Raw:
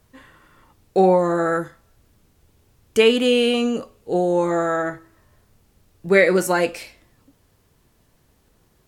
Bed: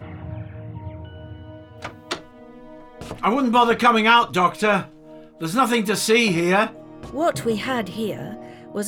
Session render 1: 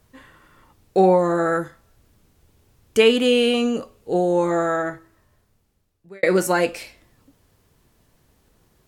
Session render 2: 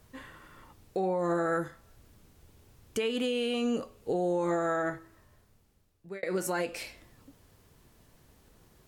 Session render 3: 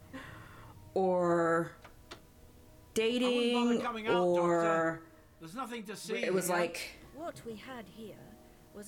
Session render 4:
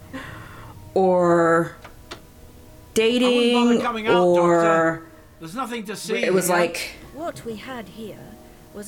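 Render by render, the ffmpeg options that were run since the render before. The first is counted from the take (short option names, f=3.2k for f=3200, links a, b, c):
-filter_complex "[0:a]asplit=2[a][b];[a]atrim=end=6.23,asetpts=PTS-STARTPTS,afade=t=out:st=4.68:d=1.55[c];[b]atrim=start=6.23,asetpts=PTS-STARTPTS,afade=t=in:d=0.004:c=hsin[d];[c][d]concat=n=2:v=0:a=1"
-af "acompressor=threshold=-19dB:ratio=6,alimiter=limit=-21.5dB:level=0:latency=1:release=350"
-filter_complex "[1:a]volume=-21.5dB[a];[0:a][a]amix=inputs=2:normalize=0"
-af "volume=12dB"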